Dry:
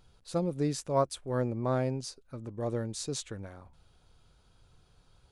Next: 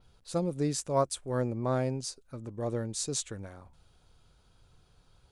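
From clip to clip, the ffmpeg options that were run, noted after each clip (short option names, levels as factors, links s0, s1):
-af "adynamicequalizer=threshold=0.00178:dfrequency=8000:dqfactor=1.1:tfrequency=8000:tqfactor=1.1:attack=5:release=100:ratio=0.375:range=3.5:mode=boostabove:tftype=bell"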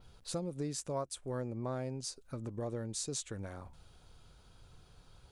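-af "acompressor=threshold=0.00794:ratio=3,volume=1.5"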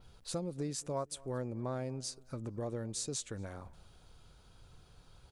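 -filter_complex "[0:a]asplit=2[s0][s1];[s1]adelay=230,lowpass=f=3100:p=1,volume=0.0708,asplit=2[s2][s3];[s3]adelay=230,lowpass=f=3100:p=1,volume=0.31[s4];[s0][s2][s4]amix=inputs=3:normalize=0"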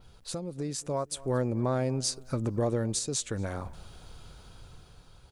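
-af "alimiter=level_in=1.88:limit=0.0631:level=0:latency=1:release=433,volume=0.531,dynaudnorm=f=210:g=9:m=2.37,volume=1.5"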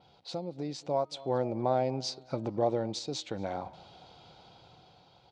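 -af "highpass=200,equalizer=f=240:t=q:w=4:g=-6,equalizer=f=420:t=q:w=4:g=-5,equalizer=f=770:t=q:w=4:g=8,equalizer=f=1200:t=q:w=4:g=-8,equalizer=f=1700:t=q:w=4:g=-10,equalizer=f=2700:t=q:w=4:g=-3,lowpass=f=4600:w=0.5412,lowpass=f=4600:w=1.3066,bandreject=f=312.8:t=h:w=4,bandreject=f=625.6:t=h:w=4,bandreject=f=938.4:t=h:w=4,bandreject=f=1251.2:t=h:w=4,bandreject=f=1564:t=h:w=4,bandreject=f=1876.8:t=h:w=4,bandreject=f=2189.6:t=h:w=4,bandreject=f=2502.4:t=h:w=4,bandreject=f=2815.2:t=h:w=4,bandreject=f=3128:t=h:w=4,bandreject=f=3440.8:t=h:w=4,bandreject=f=3753.6:t=h:w=4,bandreject=f=4066.4:t=h:w=4,bandreject=f=4379.2:t=h:w=4,volume=1.26"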